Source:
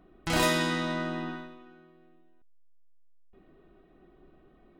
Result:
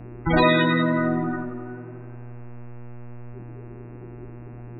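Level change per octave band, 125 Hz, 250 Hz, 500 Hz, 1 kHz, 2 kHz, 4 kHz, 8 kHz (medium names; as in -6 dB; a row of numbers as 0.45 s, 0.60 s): +10.5 dB, +10.0 dB, +9.0 dB, +8.0 dB, +7.0 dB, +2.5 dB, under -40 dB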